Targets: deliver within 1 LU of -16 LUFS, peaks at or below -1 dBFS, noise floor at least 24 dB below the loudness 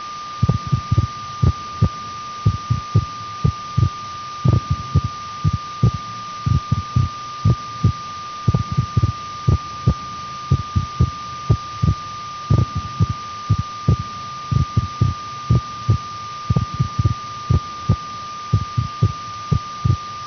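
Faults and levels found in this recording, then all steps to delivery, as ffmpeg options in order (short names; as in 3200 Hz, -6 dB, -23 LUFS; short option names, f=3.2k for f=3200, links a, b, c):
steady tone 1200 Hz; tone level -28 dBFS; noise floor -30 dBFS; noise floor target -46 dBFS; loudness -21.5 LUFS; peak -5.0 dBFS; loudness target -16.0 LUFS
-> -af "bandreject=f=1.2k:w=30"
-af "afftdn=nr=16:nf=-30"
-af "volume=5.5dB,alimiter=limit=-1dB:level=0:latency=1"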